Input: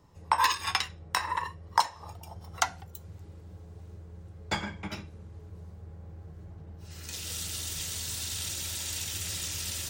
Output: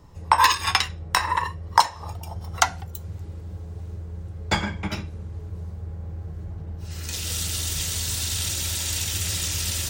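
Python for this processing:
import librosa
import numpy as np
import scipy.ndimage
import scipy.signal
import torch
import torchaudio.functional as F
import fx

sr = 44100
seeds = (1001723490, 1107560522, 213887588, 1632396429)

y = fx.low_shelf(x, sr, hz=63.0, db=11.5)
y = y * librosa.db_to_amplitude(7.5)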